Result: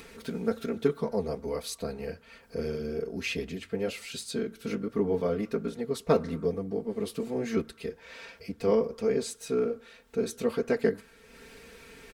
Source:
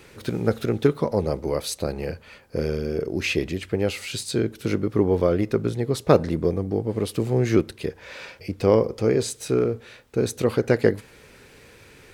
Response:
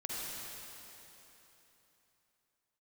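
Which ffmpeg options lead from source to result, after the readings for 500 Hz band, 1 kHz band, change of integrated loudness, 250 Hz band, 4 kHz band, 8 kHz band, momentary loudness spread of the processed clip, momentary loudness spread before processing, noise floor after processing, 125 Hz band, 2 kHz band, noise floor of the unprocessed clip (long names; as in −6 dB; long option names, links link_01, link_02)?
−6.5 dB, −7.5 dB, −7.5 dB, −7.5 dB, −7.0 dB, −7.5 dB, 14 LU, 12 LU, −57 dBFS, −13.0 dB, −7.5 dB, −50 dBFS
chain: -filter_complex "[0:a]acompressor=mode=upward:threshold=-34dB:ratio=2.5,aecho=1:1:4.4:0.99,asplit=2[link_01][link_02];[link_02]asuperpass=centerf=1300:order=4:qfactor=2.6[link_03];[1:a]atrim=start_sample=2205,afade=type=out:start_time=0.36:duration=0.01,atrim=end_sample=16317[link_04];[link_03][link_04]afir=irnorm=-1:irlink=0,volume=-16dB[link_05];[link_01][link_05]amix=inputs=2:normalize=0,flanger=delay=0.2:depth=9.6:regen=-68:speed=1.2:shape=triangular,volume=-6dB"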